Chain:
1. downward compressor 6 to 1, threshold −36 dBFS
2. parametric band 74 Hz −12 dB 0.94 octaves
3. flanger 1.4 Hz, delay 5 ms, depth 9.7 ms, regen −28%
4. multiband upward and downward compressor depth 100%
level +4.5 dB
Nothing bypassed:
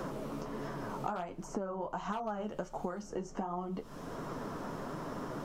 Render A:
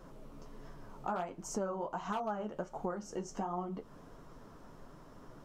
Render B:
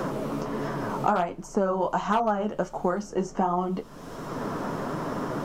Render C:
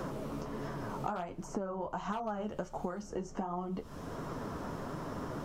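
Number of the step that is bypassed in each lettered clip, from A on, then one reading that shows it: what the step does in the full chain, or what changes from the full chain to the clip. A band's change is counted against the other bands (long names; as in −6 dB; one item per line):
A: 4, change in crest factor −3.0 dB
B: 1, change in momentary loudness spread +4 LU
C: 2, 125 Hz band +2.0 dB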